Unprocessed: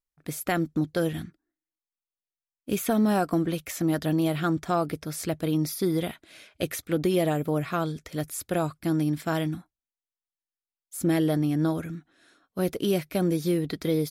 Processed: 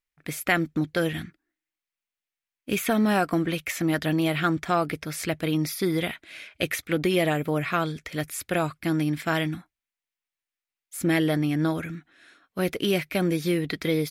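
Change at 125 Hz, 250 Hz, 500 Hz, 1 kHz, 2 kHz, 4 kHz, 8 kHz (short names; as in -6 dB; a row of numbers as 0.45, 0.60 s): 0.0, 0.0, +0.5, +2.5, +8.5, +5.5, +0.5 dB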